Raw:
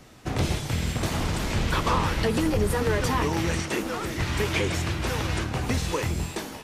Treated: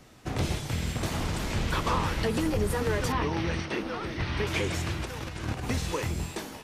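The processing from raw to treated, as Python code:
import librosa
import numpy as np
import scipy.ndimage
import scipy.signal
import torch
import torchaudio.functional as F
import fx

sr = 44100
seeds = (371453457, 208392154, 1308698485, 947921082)

y = fx.savgol(x, sr, points=15, at=(3.12, 4.47))
y = fx.over_compress(y, sr, threshold_db=-31.0, ratio=-0.5, at=(5.04, 5.62), fade=0.02)
y = y * librosa.db_to_amplitude(-3.5)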